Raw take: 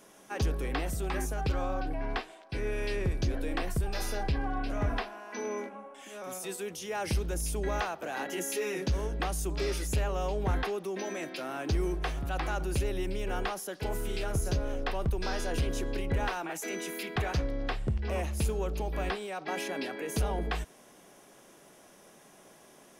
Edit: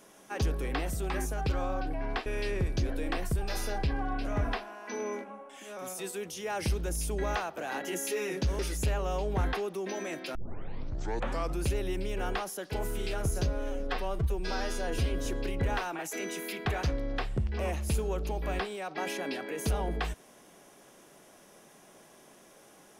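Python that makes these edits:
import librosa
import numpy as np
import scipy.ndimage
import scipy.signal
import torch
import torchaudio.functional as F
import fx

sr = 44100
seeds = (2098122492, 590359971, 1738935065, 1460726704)

y = fx.edit(x, sr, fx.cut(start_s=2.26, length_s=0.45),
    fx.cut(start_s=9.04, length_s=0.65),
    fx.tape_start(start_s=11.45, length_s=1.3),
    fx.stretch_span(start_s=14.57, length_s=1.19, factor=1.5), tone=tone)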